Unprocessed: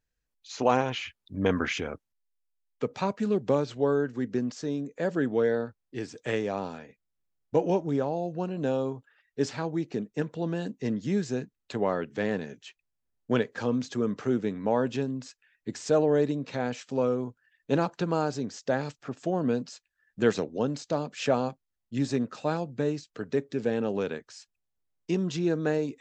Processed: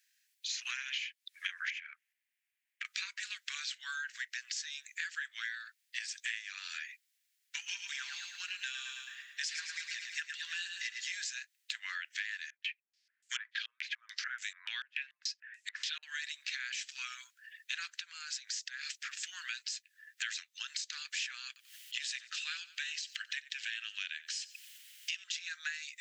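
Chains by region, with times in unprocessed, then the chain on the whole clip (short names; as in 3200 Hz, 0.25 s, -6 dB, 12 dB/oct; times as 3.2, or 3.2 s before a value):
1.7–2.85 resonant high shelf 3100 Hz -10.5 dB, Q 1.5 + compressor, threshold -34 dBFS
7.57–11.17 comb 5 ms, depth 39% + feedback echo 0.108 s, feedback 55%, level -7.5 dB
12.5–16.03 notches 60/120/180/240/300 Hz + stepped low-pass 6.9 Hz 480–7500 Hz
17.95–18.97 low shelf 230 Hz -9.5 dB + compressor 4:1, threshold -39 dBFS
21.47–25.24 bell 3000 Hz +8.5 dB 0.37 oct + upward compressor, threshold -39 dBFS + feedback echo 90 ms, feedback 32%, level -20 dB
whole clip: steep high-pass 1700 Hz 48 dB/oct; compressor 6:1, threshold -53 dBFS; gain +16 dB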